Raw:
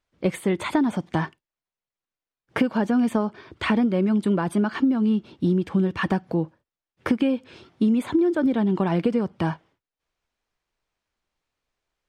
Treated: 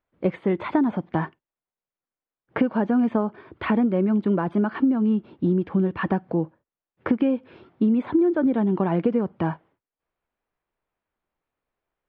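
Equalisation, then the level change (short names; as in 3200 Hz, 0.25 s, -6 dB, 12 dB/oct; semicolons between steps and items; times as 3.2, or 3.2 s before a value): LPF 1700 Hz 6 dB/oct; air absorption 250 m; low shelf 140 Hz -7.5 dB; +2.5 dB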